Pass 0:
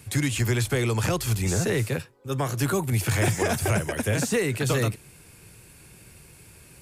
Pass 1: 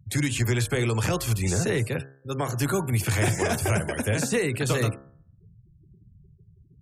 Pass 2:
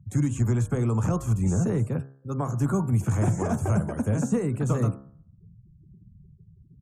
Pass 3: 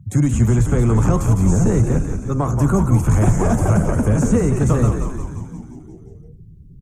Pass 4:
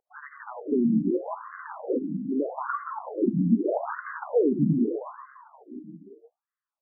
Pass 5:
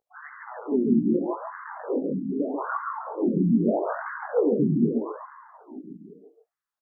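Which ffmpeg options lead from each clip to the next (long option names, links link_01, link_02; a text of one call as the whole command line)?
ffmpeg -i in.wav -af "afftfilt=real='re*gte(hypot(re,im),0.0112)':imag='im*gte(hypot(re,im),0.0112)':win_size=1024:overlap=0.75,bandreject=frequency=67.49:width_type=h:width=4,bandreject=frequency=134.98:width_type=h:width=4,bandreject=frequency=202.47:width_type=h:width=4,bandreject=frequency=269.96:width_type=h:width=4,bandreject=frequency=337.45:width_type=h:width=4,bandreject=frequency=404.94:width_type=h:width=4,bandreject=frequency=472.43:width_type=h:width=4,bandreject=frequency=539.92:width_type=h:width=4,bandreject=frequency=607.41:width_type=h:width=4,bandreject=frequency=674.9:width_type=h:width=4,bandreject=frequency=742.39:width_type=h:width=4,bandreject=frequency=809.88:width_type=h:width=4,bandreject=frequency=877.37:width_type=h:width=4,bandreject=frequency=944.86:width_type=h:width=4,bandreject=frequency=1012.35:width_type=h:width=4,bandreject=frequency=1079.84:width_type=h:width=4,bandreject=frequency=1147.33:width_type=h:width=4,bandreject=frequency=1214.82:width_type=h:width=4,bandreject=frequency=1282.31:width_type=h:width=4,bandreject=frequency=1349.8:width_type=h:width=4,bandreject=frequency=1417.29:width_type=h:width=4,bandreject=frequency=1484.78:width_type=h:width=4,bandreject=frequency=1552.27:width_type=h:width=4,bandreject=frequency=1619.76:width_type=h:width=4,bandreject=frequency=1687.25:width_type=h:width=4,bandreject=frequency=1754.74:width_type=h:width=4" out.wav
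ffmpeg -i in.wav -af "firequalizer=gain_entry='entry(110,0);entry(200,5);entry(370,-5);entry(1200,-2);entry(1800,-17);entry(4500,-26);entry(6500,-7);entry(11000,-18)':delay=0.05:min_phase=1,volume=1dB" out.wav
ffmpeg -i in.wav -filter_complex "[0:a]asplit=2[link_01][link_02];[link_02]asoftclip=type=tanh:threshold=-30dB,volume=-10dB[link_03];[link_01][link_03]amix=inputs=2:normalize=0,asplit=9[link_04][link_05][link_06][link_07][link_08][link_09][link_10][link_11][link_12];[link_05]adelay=176,afreqshift=-73,volume=-6dB[link_13];[link_06]adelay=352,afreqshift=-146,volume=-10.3dB[link_14];[link_07]adelay=528,afreqshift=-219,volume=-14.6dB[link_15];[link_08]adelay=704,afreqshift=-292,volume=-18.9dB[link_16];[link_09]adelay=880,afreqshift=-365,volume=-23.2dB[link_17];[link_10]adelay=1056,afreqshift=-438,volume=-27.5dB[link_18];[link_11]adelay=1232,afreqshift=-511,volume=-31.8dB[link_19];[link_12]adelay=1408,afreqshift=-584,volume=-36.1dB[link_20];[link_04][link_13][link_14][link_15][link_16][link_17][link_18][link_19][link_20]amix=inputs=9:normalize=0,volume=7dB" out.wav
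ffmpeg -i in.wav -af "afftfilt=real='re*between(b*sr/1024,220*pow(1500/220,0.5+0.5*sin(2*PI*0.8*pts/sr))/1.41,220*pow(1500/220,0.5+0.5*sin(2*PI*0.8*pts/sr))*1.41)':imag='im*between(b*sr/1024,220*pow(1500/220,0.5+0.5*sin(2*PI*0.8*pts/sr))/1.41,220*pow(1500/220,0.5+0.5*sin(2*PI*0.8*pts/sr))*1.41)':win_size=1024:overlap=0.75" out.wav
ffmpeg -i in.wav -af "flanger=delay=17:depth=6.1:speed=2.9,aecho=1:1:139:0.596,volume=3dB" out.wav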